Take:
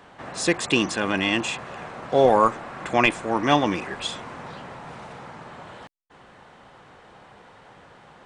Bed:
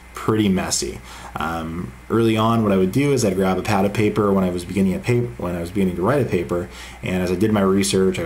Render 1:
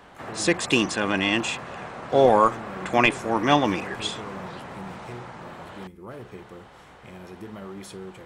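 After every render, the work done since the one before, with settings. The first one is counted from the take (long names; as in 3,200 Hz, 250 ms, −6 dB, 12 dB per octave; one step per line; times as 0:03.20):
mix in bed −22 dB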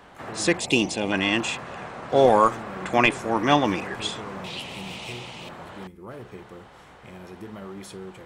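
0:00.59–0:01.12: flat-topped bell 1,400 Hz −13.5 dB 1 octave
0:02.16–0:02.63: high-shelf EQ 4,700 Hz +5 dB
0:04.44–0:05.49: high shelf with overshoot 2,100 Hz +9.5 dB, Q 3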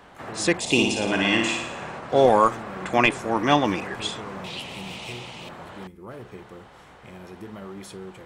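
0:00.60–0:01.99: flutter between parallel walls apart 9.6 metres, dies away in 0.77 s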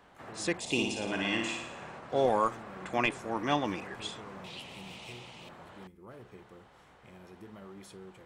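level −10 dB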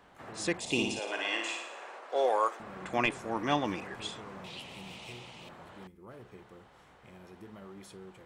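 0:00.99–0:02.60: high-pass filter 400 Hz 24 dB per octave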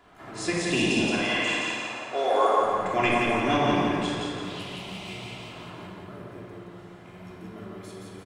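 repeating echo 172 ms, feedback 45%, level −3 dB
rectangular room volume 1,700 cubic metres, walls mixed, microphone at 3.1 metres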